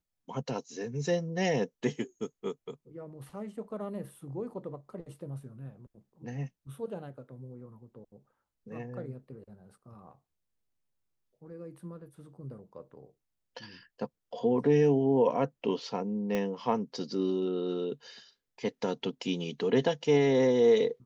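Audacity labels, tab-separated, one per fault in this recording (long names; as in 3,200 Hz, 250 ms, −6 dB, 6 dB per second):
16.350000	16.350000	click −18 dBFS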